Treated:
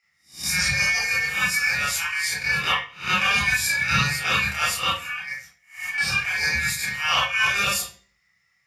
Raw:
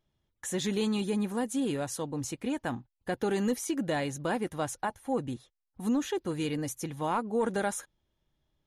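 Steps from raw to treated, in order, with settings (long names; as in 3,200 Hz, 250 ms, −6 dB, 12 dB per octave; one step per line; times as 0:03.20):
peak hold with a rise ahead of every peak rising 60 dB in 0.34 s
0:02.67–0:03.45: parametric band 1,000 Hz +12.5 dB 0.61 octaves
0:04.96–0:05.98: downward compressor 6 to 1, threshold −36 dBFS, peak gain reduction 11.5 dB
ring modulation 2,000 Hz
0:07.08–0:07.53: parametric band 5,700 Hz +10 dB 0.29 octaves
convolution reverb RT60 0.40 s, pre-delay 24 ms, DRR −5 dB
level +4 dB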